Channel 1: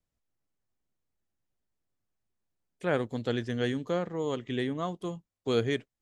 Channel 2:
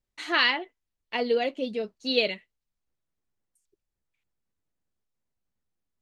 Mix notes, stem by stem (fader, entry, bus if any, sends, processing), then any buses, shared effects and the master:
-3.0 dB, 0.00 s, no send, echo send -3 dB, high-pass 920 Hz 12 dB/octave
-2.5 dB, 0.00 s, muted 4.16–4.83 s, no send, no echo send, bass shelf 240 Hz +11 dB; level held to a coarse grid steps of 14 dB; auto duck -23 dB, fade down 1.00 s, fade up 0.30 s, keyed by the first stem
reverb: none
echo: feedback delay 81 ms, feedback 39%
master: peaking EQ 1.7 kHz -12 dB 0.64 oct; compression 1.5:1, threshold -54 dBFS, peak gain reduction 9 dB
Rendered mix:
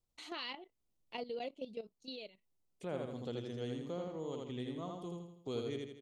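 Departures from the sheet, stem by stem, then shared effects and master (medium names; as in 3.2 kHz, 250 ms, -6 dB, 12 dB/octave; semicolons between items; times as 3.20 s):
stem 1: missing high-pass 920 Hz 12 dB/octave; stem 2: missing bass shelf 240 Hz +11 dB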